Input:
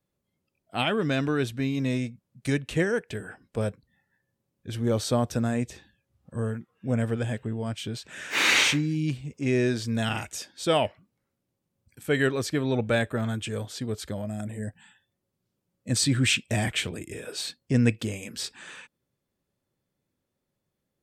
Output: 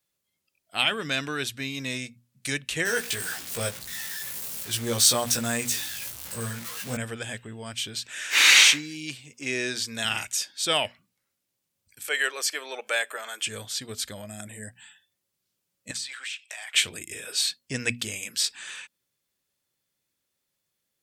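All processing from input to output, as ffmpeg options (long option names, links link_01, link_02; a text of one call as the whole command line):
ffmpeg -i in.wav -filter_complex "[0:a]asettb=1/sr,asplit=3[link_01][link_02][link_03];[link_01]atrim=end=2.854[link_04];[link_02]atrim=start=2.85:end=6.97,asetpts=PTS-STARTPTS,afade=type=in:duration=0.004:curve=qsin,afade=type=out:start_time=4.116:duration=0.004:curve=qsin,aeval=exprs='val(0)+0.5*0.0119*sgn(val(0))':channel_layout=same,highshelf=frequency=6900:gain=8,asplit=2[link_05][link_06];[link_06]adelay=17,volume=-2dB[link_07];[link_05][link_07]amix=inputs=2:normalize=0,atrim=end_sample=181692[link_08];[link_03]atrim=start=6.966[link_09];[link_04][link_08]acrossfade=duration=0.004:curve1=hsin:curve2=qsin[link_10];[link_10][link_09]acrossfade=duration=0.004:curve1=qsin:curve2=hsin,asettb=1/sr,asplit=3[link_11][link_12][link_13];[link_11]atrim=end=8.094[link_14];[link_12]atrim=start=8.09:end=10.05,asetpts=PTS-STARTPTS,afade=type=in:duration=0.004:curve=qsin,afade=type=out:start_time=1.956:duration=0.004:curve=qsin,highpass=130,equalizer=frequency=170:width=5.5:gain=-14[link_15];[link_13]atrim=start=10.046[link_16];[link_14][link_15]acrossfade=duration=0.004:curve1=hsin:curve2=qsin[link_17];[link_17][link_16]acrossfade=duration=0.004:curve1=qsin:curve2=hsin,asettb=1/sr,asplit=3[link_18][link_19][link_20];[link_18]atrim=end=12.084[link_21];[link_19]atrim=start=12.08:end=13.46,asetpts=PTS-STARTPTS,afade=type=in:duration=0.004:curve=qsin,afade=type=out:start_time=1.376:duration=0.004:curve=qsin,highpass=frequency=450:width=0.5412,highpass=frequency=450:width=1.3066,bandreject=frequency=3800:width=6.3,acompressor=mode=upward:threshold=-32dB:ratio=2.5:attack=3.2:release=140:knee=2.83:detection=peak[link_22];[link_20]atrim=start=13.456[link_23];[link_21][link_22]acrossfade=duration=0.004:curve1=hsin:curve2=qsin[link_24];[link_24][link_23]acrossfade=duration=0.004:curve1=qsin:curve2=hsin,asettb=1/sr,asplit=3[link_25][link_26][link_27];[link_25]atrim=end=15.914[link_28];[link_26]atrim=start=15.91:end=16.74,asetpts=PTS-STARTPTS,afade=type=in:duration=0.004:curve=qsin,afade=type=out:start_time=0.826:duration=0.004:curve=qsin,highpass=frequency=740:width=0.5412,highpass=frequency=740:width=1.3066,highshelf=frequency=6100:gain=-11,acompressor=threshold=-38dB:ratio=8:attack=3.2:release=140:knee=1:detection=peak[link_29];[link_27]atrim=start=16.736[link_30];[link_28][link_29]acrossfade=duration=0.004:curve1=hsin:curve2=qsin[link_31];[link_31][link_30]acrossfade=duration=0.004:curve1=qsin:curve2=hsin,tiltshelf=frequency=1200:gain=-9.5,bandreject=frequency=60:width_type=h:width=6,bandreject=frequency=120:width_type=h:width=6,bandreject=frequency=180:width_type=h:width=6,bandreject=frequency=240:width_type=h:width=6" out.wav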